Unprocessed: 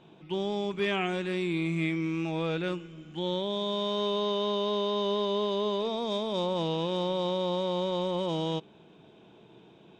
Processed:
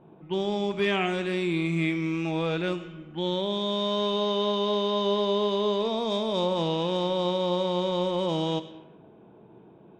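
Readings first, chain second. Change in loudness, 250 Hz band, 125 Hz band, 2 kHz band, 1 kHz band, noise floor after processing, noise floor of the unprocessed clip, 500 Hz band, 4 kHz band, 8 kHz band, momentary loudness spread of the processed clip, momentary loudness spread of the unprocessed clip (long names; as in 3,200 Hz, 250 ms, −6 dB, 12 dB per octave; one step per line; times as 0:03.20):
+3.0 dB, +3.0 dB, +3.0 dB, +3.5 dB, +3.5 dB, −52 dBFS, −56 dBFS, +3.0 dB, +3.0 dB, can't be measured, 5 LU, 4 LU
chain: four-comb reverb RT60 1.1 s, combs from 28 ms, DRR 12 dB
low-pass that shuts in the quiet parts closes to 1,000 Hz, open at −28 dBFS
level +3 dB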